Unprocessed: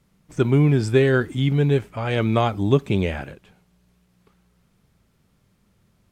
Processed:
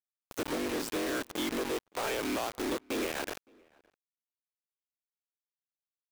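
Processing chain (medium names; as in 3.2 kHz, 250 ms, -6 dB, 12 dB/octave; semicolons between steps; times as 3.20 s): cycle switcher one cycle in 3, inverted; steep high-pass 260 Hz 48 dB/octave; compression 8:1, threshold -33 dBFS, peak gain reduction 19.5 dB; companded quantiser 2-bit; echo from a far wall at 97 m, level -28 dB; trim -4.5 dB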